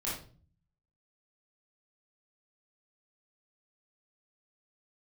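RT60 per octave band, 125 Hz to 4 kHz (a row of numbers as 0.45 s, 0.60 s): 0.90 s, 0.70 s, 0.45 s, 0.35 s, 0.35 s, 0.35 s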